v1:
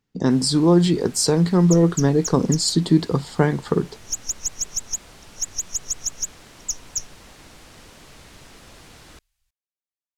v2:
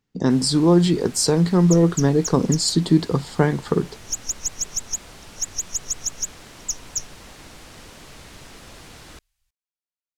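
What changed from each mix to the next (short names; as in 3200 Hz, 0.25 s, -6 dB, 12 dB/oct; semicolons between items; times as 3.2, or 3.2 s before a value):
first sound +3.0 dB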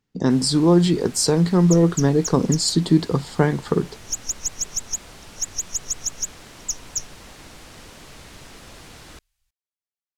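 none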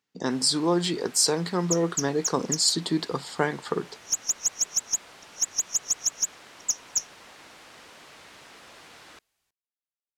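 first sound: add high shelf 4400 Hz -10 dB; second sound: remove passive tone stack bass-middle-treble 10-0-10; master: add HPF 810 Hz 6 dB/oct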